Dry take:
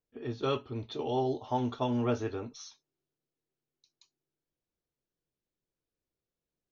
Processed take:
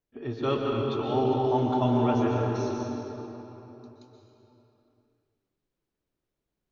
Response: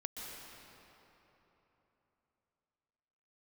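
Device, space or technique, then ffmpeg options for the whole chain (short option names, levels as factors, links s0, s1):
swimming-pool hall: -filter_complex "[0:a]bandreject=f=480:w=12[s0];[1:a]atrim=start_sample=2205[s1];[s0][s1]afir=irnorm=-1:irlink=0,highshelf=f=3900:g=-7.5,volume=2.37"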